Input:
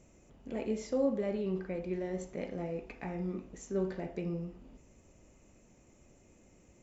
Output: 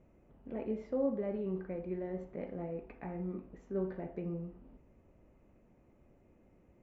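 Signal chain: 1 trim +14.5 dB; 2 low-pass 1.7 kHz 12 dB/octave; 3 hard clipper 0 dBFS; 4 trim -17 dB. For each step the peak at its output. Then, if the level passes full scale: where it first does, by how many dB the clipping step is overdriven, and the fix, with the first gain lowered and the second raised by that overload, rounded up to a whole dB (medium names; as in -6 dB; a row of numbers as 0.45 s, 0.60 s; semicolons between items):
-5.0 dBFS, -5.0 dBFS, -5.0 dBFS, -22.0 dBFS; nothing clips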